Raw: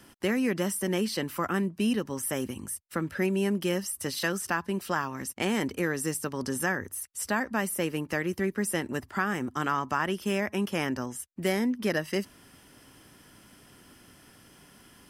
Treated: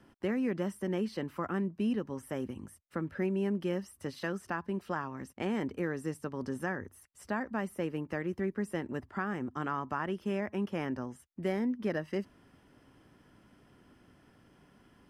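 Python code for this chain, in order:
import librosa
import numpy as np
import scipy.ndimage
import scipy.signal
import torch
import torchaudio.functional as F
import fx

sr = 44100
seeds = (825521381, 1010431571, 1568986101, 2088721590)

y = fx.lowpass(x, sr, hz=1200.0, slope=6)
y = F.gain(torch.from_numpy(y), -4.0).numpy()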